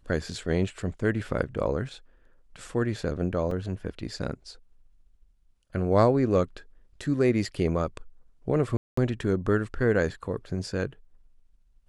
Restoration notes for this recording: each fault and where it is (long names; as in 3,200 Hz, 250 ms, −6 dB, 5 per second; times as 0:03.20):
0:03.51: drop-out 3.4 ms
0:08.77–0:08.97: drop-out 204 ms